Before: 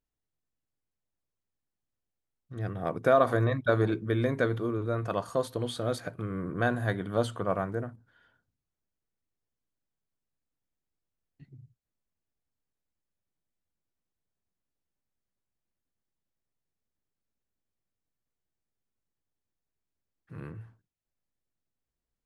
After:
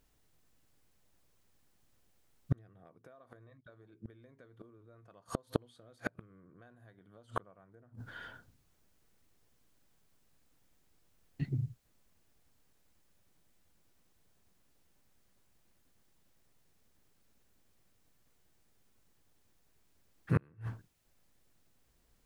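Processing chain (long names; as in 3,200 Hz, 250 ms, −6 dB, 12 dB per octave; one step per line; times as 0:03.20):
downward compressor 10 to 1, threshold −35 dBFS, peak gain reduction 18 dB
gate with flip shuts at −34 dBFS, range −37 dB
level +17 dB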